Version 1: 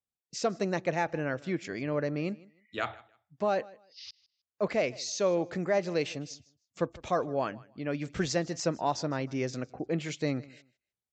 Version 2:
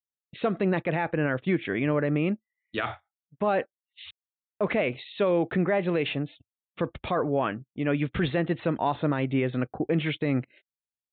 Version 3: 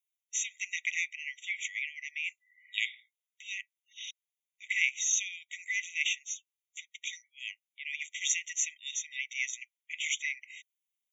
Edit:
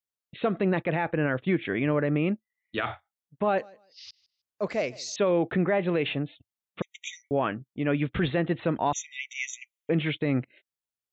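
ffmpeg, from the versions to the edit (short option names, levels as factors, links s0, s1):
-filter_complex "[2:a]asplit=2[s0][s1];[1:a]asplit=4[s2][s3][s4][s5];[s2]atrim=end=3.582[s6];[0:a]atrim=start=3.578:end=5.162[s7];[s3]atrim=start=5.158:end=6.822[s8];[s0]atrim=start=6.818:end=7.312[s9];[s4]atrim=start=7.308:end=8.932[s10];[s1]atrim=start=8.928:end=9.892[s11];[s5]atrim=start=9.888[s12];[s6][s7]acrossfade=d=0.004:c1=hsin:c2=hsin[s13];[s13][s8]acrossfade=d=0.004:c1=hsin:c2=hsin[s14];[s14][s9]acrossfade=d=0.004:c1=hsin:c2=hsin[s15];[s15][s10]acrossfade=d=0.004:c1=hsin:c2=hsin[s16];[s16][s11]acrossfade=d=0.004:c1=hsin:c2=hsin[s17];[s17][s12]acrossfade=d=0.004:c1=hsin:c2=hsin"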